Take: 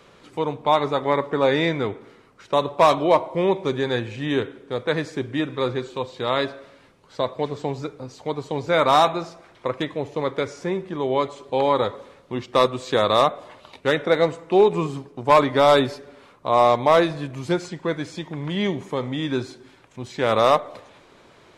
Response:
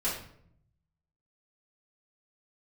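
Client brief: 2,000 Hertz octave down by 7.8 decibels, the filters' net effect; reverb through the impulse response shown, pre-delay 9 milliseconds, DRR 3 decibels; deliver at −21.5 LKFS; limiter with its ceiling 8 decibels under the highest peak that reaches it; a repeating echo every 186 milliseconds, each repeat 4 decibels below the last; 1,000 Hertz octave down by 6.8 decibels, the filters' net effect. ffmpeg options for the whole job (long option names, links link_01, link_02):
-filter_complex "[0:a]equalizer=frequency=1000:width_type=o:gain=-7,equalizer=frequency=2000:width_type=o:gain=-7.5,alimiter=limit=-16dB:level=0:latency=1,aecho=1:1:186|372|558|744|930|1116|1302|1488|1674:0.631|0.398|0.25|0.158|0.0994|0.0626|0.0394|0.0249|0.0157,asplit=2[link_01][link_02];[1:a]atrim=start_sample=2205,adelay=9[link_03];[link_02][link_03]afir=irnorm=-1:irlink=0,volume=-10dB[link_04];[link_01][link_04]amix=inputs=2:normalize=0,volume=3dB"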